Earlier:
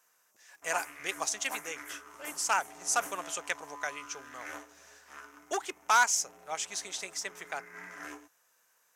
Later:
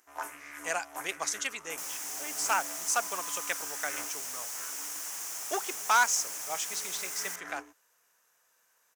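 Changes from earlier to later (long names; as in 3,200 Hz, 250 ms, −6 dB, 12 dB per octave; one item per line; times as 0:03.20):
first sound: entry −0.55 s
second sound: unmuted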